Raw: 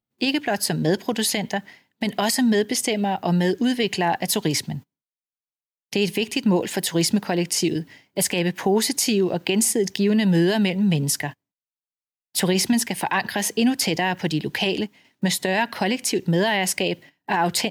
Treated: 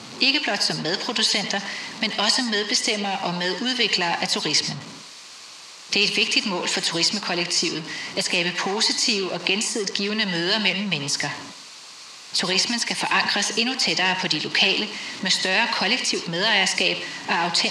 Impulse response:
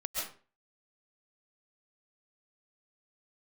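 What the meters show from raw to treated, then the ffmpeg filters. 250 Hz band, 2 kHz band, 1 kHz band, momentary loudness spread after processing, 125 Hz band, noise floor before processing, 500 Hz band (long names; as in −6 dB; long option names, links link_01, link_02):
−7.0 dB, +5.0 dB, −0.5 dB, 11 LU, −8.5 dB, below −85 dBFS, −4.5 dB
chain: -filter_complex "[0:a]aeval=exprs='val(0)+0.5*0.0211*sgn(val(0))':channel_layout=same,highshelf=frequency=4300:gain=7.5,acrossover=split=630|1600[link_01][link_02][link_03];[link_01]acompressor=threshold=-29dB:ratio=5[link_04];[link_02]asoftclip=type=tanh:threshold=-32dB[link_05];[link_03]alimiter=limit=-12dB:level=0:latency=1:release=187[link_06];[link_04][link_05][link_06]amix=inputs=3:normalize=0,highpass=160,equalizer=frequency=1100:width_type=q:width=4:gain=7,equalizer=frequency=2500:width_type=q:width=4:gain=4,equalizer=frequency=4400:width_type=q:width=4:gain=7,lowpass=frequency=6900:width=0.5412,lowpass=frequency=6900:width=1.3066,asplit=2[link_07][link_08];[1:a]atrim=start_sample=2205,asetrate=66150,aresample=44100[link_09];[link_08][link_09]afir=irnorm=-1:irlink=0,volume=-6dB[link_10];[link_07][link_10]amix=inputs=2:normalize=0"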